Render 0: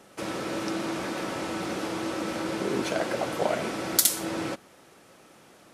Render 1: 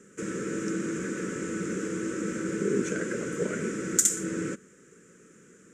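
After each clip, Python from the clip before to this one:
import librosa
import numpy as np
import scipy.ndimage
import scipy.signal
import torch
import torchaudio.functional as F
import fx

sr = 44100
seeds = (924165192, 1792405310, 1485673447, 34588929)

y = fx.curve_eq(x, sr, hz=(120.0, 180.0, 310.0, 450.0, 740.0, 1500.0, 4400.0, 7200.0, 11000.0), db=(0, 9, 2, 8, -28, 4, -15, 12, -12))
y = y * librosa.db_to_amplitude(-3.0)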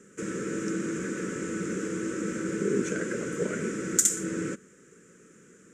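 y = x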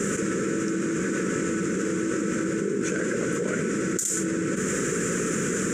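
y = fx.env_flatten(x, sr, amount_pct=100)
y = y * librosa.db_to_amplitude(-7.5)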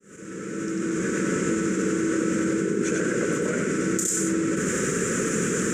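y = fx.fade_in_head(x, sr, length_s=1.13)
y = y + 10.0 ** (-4.0 / 20.0) * np.pad(y, (int(95 * sr / 1000.0), 0))[:len(y)]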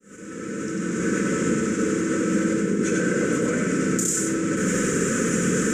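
y = fx.room_shoebox(x, sr, seeds[0], volume_m3=2500.0, walls='furnished', distance_m=2.0)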